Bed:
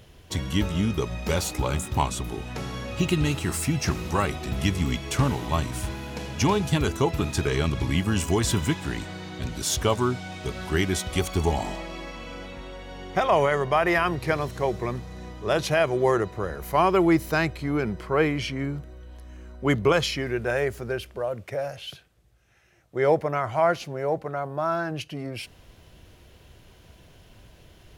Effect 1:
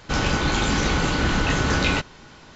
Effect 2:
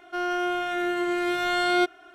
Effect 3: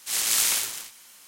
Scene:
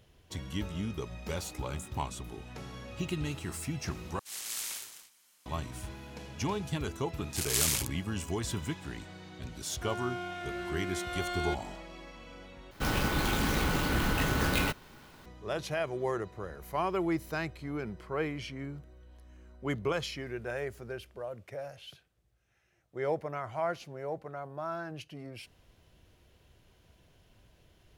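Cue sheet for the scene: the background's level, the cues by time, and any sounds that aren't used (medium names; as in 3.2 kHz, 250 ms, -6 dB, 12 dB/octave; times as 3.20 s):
bed -11 dB
4.19 s: replace with 3 -15 dB
7.23 s: add 3 -3.5 dB + local Wiener filter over 41 samples
9.69 s: add 2 -12 dB
12.71 s: replace with 1 -7.5 dB + sampling jitter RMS 0.026 ms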